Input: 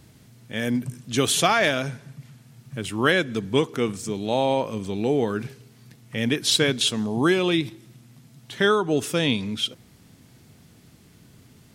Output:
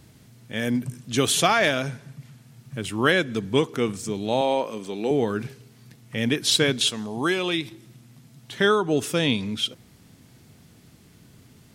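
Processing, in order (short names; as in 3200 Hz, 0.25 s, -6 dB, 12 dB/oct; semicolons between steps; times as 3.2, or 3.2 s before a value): 4.41–5.11 HPF 270 Hz 12 dB/oct; 6.9–7.71 low shelf 480 Hz -7.5 dB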